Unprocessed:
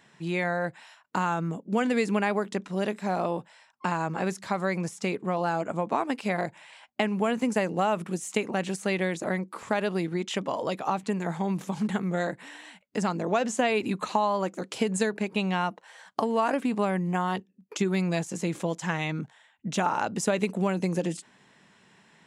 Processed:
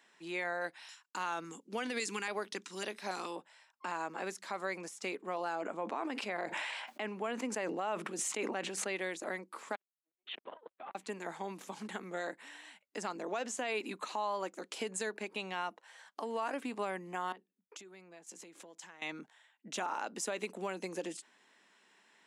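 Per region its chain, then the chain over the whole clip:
0:00.61–0:03.36: noise gate with hold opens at −43 dBFS, closes at −50 dBFS + parametric band 6,800 Hz +13 dB 1.9 octaves + auto-filter notch square 1.8 Hz 630–7,400 Hz
0:05.55–0:08.96: low-pass filter 3,600 Hz 6 dB per octave + level that may fall only so fast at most 25 dB per second
0:09.75–0:10.95: downward compressor, threshold −30 dBFS + linear-prediction vocoder at 8 kHz pitch kept + saturating transformer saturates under 510 Hz
0:17.32–0:19.02: downward compressor 12 to 1, threshold −38 dBFS + multiband upward and downward expander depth 100%
whole clip: high-pass filter 280 Hz 24 dB per octave; parametric band 480 Hz −4 dB 2 octaves; brickwall limiter −20.5 dBFS; level −5.5 dB

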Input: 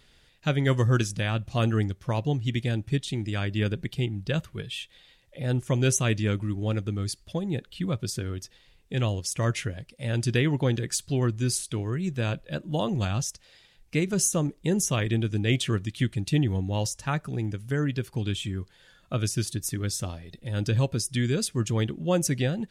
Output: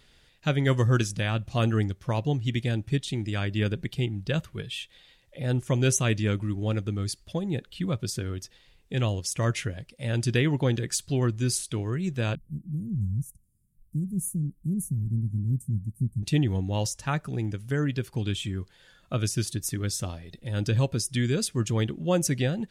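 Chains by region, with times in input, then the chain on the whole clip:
0:12.35–0:16.23: inverse Chebyshev band-stop filter 640–4,100 Hz, stop band 60 dB + highs frequency-modulated by the lows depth 0.16 ms
whole clip: no processing

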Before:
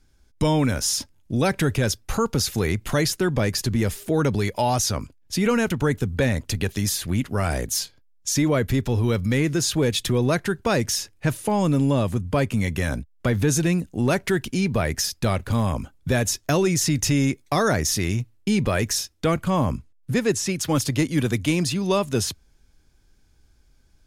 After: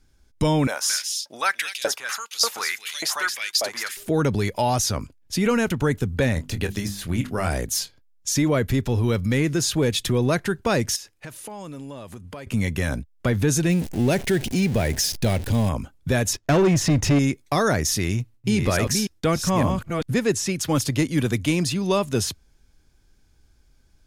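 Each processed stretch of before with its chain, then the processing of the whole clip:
0:00.67–0:03.97: single-tap delay 223 ms −6 dB + auto-filter high-pass saw up 1.7 Hz 600–4,600 Hz
0:06.34–0:07.49: de-essing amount 55% + mains-hum notches 50/100/150/200/250/300/350 Hz + double-tracking delay 25 ms −10 dB
0:10.96–0:12.47: low-shelf EQ 270 Hz −10.5 dB + downward compressor 4 to 1, threshold −35 dBFS
0:13.69–0:15.69: converter with a step at zero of −28 dBFS + parametric band 1,200 Hz −11.5 dB 0.61 octaves
0:16.33–0:17.19: low-pass filter 1,900 Hz 6 dB per octave + leveller curve on the samples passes 2
0:17.91–0:20.19: delay that plays each chunk backwards 430 ms, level −5 dB + noise gate with hold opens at −47 dBFS, closes at −51 dBFS
whole clip: no processing

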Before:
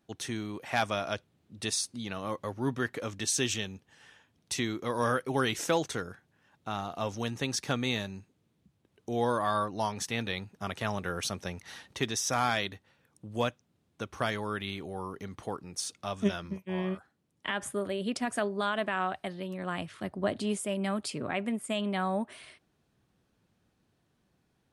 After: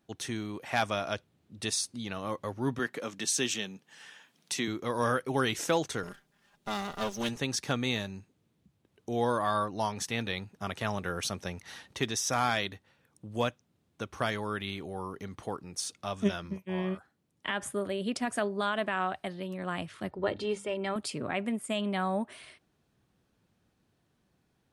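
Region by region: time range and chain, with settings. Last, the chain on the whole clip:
0:02.79–0:04.68: Chebyshev high-pass filter 160 Hz, order 3 + one half of a high-frequency compander encoder only
0:06.03–0:07.37: lower of the sound and its delayed copy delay 5 ms + high-shelf EQ 3,800 Hz +5.5 dB
0:20.11–0:20.96: low-pass filter 4,800 Hz + mains-hum notches 50/100/150/200/250/300 Hz + comb filter 2.2 ms, depth 60%
whole clip: no processing

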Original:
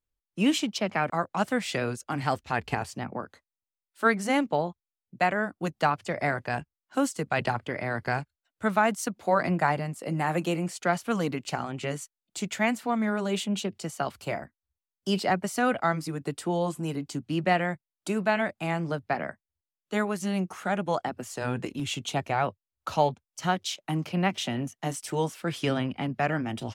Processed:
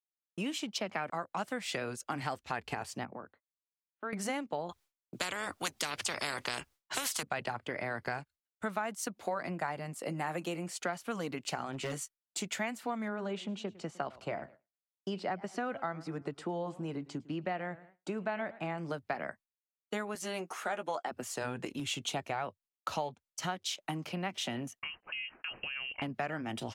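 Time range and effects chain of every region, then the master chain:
0:03.05–0:04.13: downward compressor 2 to 1, threshold −42 dBFS + high-frequency loss of the air 490 metres
0:04.69–0:07.23: high-shelf EQ 11,000 Hz −5.5 dB + every bin compressed towards the loudest bin 4 to 1
0:11.72–0:12.38: double-tracking delay 15 ms −9.5 dB + hard clipping −28 dBFS
0:13.08–0:18.78: low-pass filter 7,000 Hz + high-shelf EQ 3,000 Hz −11.5 dB + feedback echo with a swinging delay time 107 ms, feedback 34%, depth 124 cents, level −22 dB
0:20.15–0:21.11: high-pass filter 310 Hz + double-tracking delay 13 ms −9.5 dB
0:24.79–0:26.02: downward expander −43 dBFS + downward compressor 12 to 1, threshold −35 dBFS + voice inversion scrambler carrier 3,000 Hz
whole clip: downward expander −47 dBFS; downward compressor, threshold −31 dBFS; low-shelf EQ 210 Hz −8 dB

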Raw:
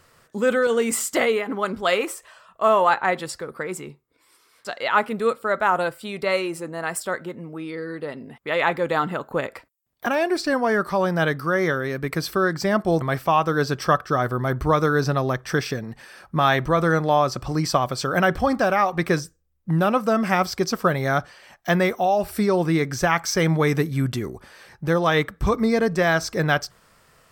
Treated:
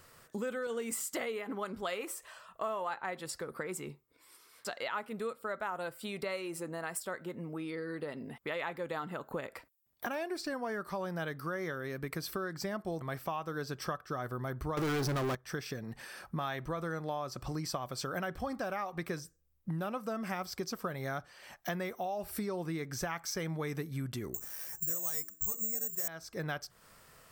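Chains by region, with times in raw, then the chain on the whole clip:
0:14.77–0:15.35: parametric band 350 Hz +10 dB 0.36 octaves + leveller curve on the samples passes 5
0:24.34–0:26.08: mains-hum notches 60/120/180/240/300/360/420/480/540 Hz + bad sample-rate conversion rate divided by 6×, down filtered, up zero stuff
whole clip: high-shelf EQ 10,000 Hz +8.5 dB; downward compressor 4 to 1, threshold −33 dBFS; level −3.5 dB

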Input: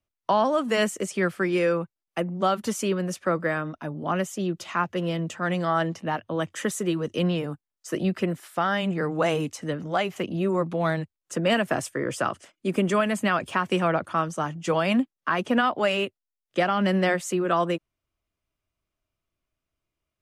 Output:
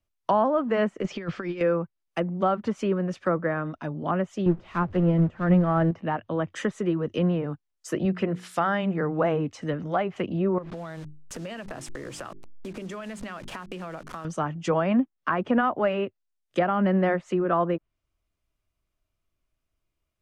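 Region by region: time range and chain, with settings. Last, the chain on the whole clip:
0:01.02–0:01.61: Butterworth low-pass 6,900 Hz + compressor whose output falls as the input rises −29 dBFS, ratio −0.5
0:04.46–0:05.91: converter with a step at zero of −31 dBFS + low-shelf EQ 350 Hz +9.5 dB + expander for the loud parts 2.5 to 1, over −27 dBFS
0:08.05–0:08.96: high-pass filter 49 Hz + high-shelf EQ 3,100 Hz +11 dB + mains-hum notches 60/120/180/240/300/360/420/480 Hz
0:10.58–0:14.25: hold until the input has moved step −35.5 dBFS + mains-hum notches 50/100/150/200/250/300/350/400 Hz + downward compressor 10 to 1, threshold −33 dBFS
whole clip: low-shelf EQ 61 Hz +9.5 dB; treble cut that deepens with the level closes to 1,500 Hz, closed at −21.5 dBFS

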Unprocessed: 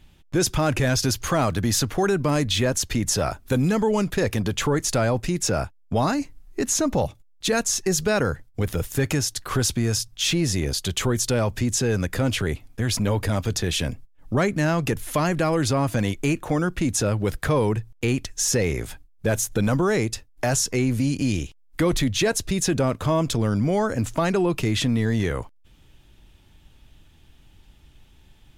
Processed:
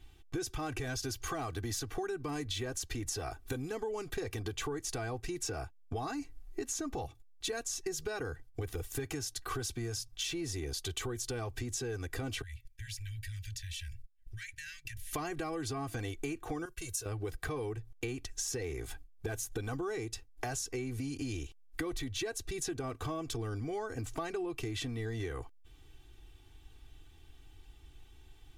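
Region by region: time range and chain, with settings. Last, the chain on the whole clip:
0:12.42–0:15.13: Chebyshev band-stop filter 110–1,700 Hz, order 5 + noise gate −42 dBFS, range −13 dB + downward compressor 2.5 to 1, threshold −39 dBFS
0:16.65–0:17.06: first-order pre-emphasis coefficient 0.8 + downward expander −45 dBFS + comb filter 1.9 ms, depth 92%
whole clip: notch filter 550 Hz, Q 15; comb filter 2.6 ms, depth 85%; downward compressor 6 to 1, threshold −28 dBFS; level −7 dB

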